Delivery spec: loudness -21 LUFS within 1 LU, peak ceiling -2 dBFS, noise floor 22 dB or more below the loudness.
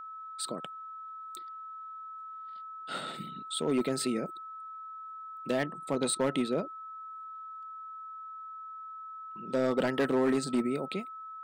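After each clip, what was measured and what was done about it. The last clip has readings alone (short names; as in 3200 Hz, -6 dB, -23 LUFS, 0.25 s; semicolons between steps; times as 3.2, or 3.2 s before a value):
clipped 0.9%; flat tops at -21.5 dBFS; steady tone 1300 Hz; tone level -41 dBFS; loudness -34.5 LUFS; peak -21.5 dBFS; loudness target -21.0 LUFS
-> clip repair -21.5 dBFS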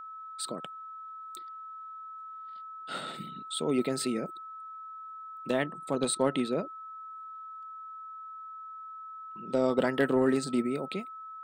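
clipped 0.0%; steady tone 1300 Hz; tone level -41 dBFS
-> notch 1300 Hz, Q 30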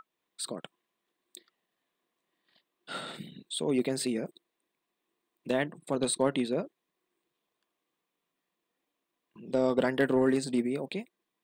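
steady tone none; loudness -30.5 LUFS; peak -12.5 dBFS; loudness target -21.0 LUFS
-> gain +9.5 dB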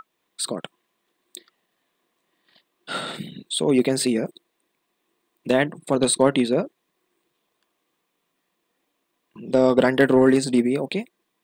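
loudness -21.0 LUFS; peak -3.0 dBFS; noise floor -75 dBFS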